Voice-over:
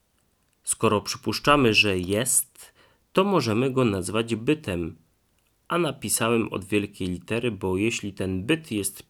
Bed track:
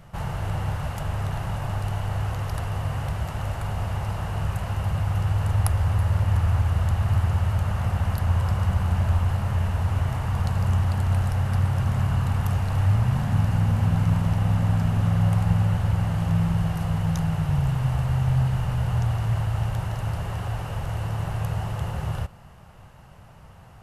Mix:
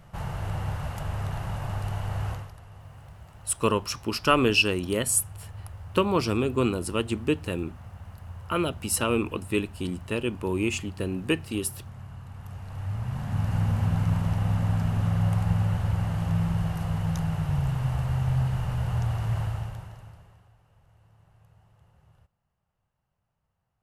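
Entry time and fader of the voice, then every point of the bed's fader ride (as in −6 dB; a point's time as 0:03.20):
2.80 s, −2.5 dB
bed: 0:02.32 −3.5 dB
0:02.55 −19 dB
0:12.29 −19 dB
0:13.58 −3.5 dB
0:19.46 −3.5 dB
0:20.56 −31.5 dB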